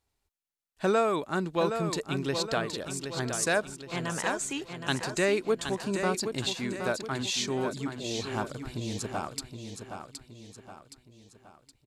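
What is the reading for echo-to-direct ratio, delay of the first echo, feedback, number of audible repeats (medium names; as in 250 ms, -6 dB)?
-6.5 dB, 769 ms, 45%, 4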